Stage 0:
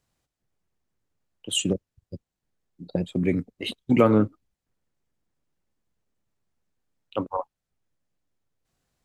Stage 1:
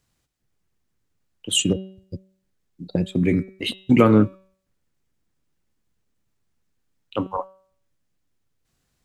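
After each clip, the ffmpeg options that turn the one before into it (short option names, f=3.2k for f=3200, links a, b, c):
-af "equalizer=f=670:w=1:g=-5,bandreject=f=189.9:t=h:w=4,bandreject=f=379.8:t=h:w=4,bandreject=f=569.7:t=h:w=4,bandreject=f=759.6:t=h:w=4,bandreject=f=949.5:t=h:w=4,bandreject=f=1.1394k:t=h:w=4,bandreject=f=1.3293k:t=h:w=4,bandreject=f=1.5192k:t=h:w=4,bandreject=f=1.7091k:t=h:w=4,bandreject=f=1.899k:t=h:w=4,bandreject=f=2.0889k:t=h:w=4,bandreject=f=2.2788k:t=h:w=4,bandreject=f=2.4687k:t=h:w=4,bandreject=f=2.6586k:t=h:w=4,bandreject=f=2.8485k:t=h:w=4,bandreject=f=3.0384k:t=h:w=4,bandreject=f=3.2283k:t=h:w=4,bandreject=f=3.4182k:t=h:w=4,bandreject=f=3.6081k:t=h:w=4,bandreject=f=3.798k:t=h:w=4,bandreject=f=3.9879k:t=h:w=4,volume=5.5dB"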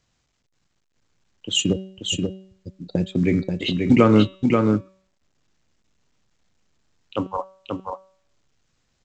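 -af "aecho=1:1:534:0.631" -ar 16000 -c:a pcm_alaw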